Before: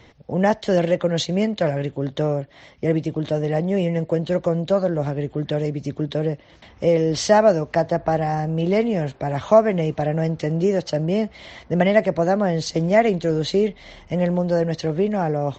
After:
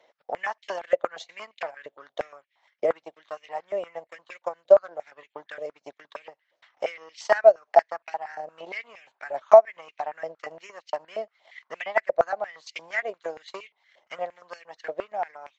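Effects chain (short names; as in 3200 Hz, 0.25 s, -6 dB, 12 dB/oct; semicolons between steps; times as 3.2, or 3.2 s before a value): transient shaper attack +12 dB, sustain -12 dB; stepped high-pass 8.6 Hz 600–2400 Hz; gain -14 dB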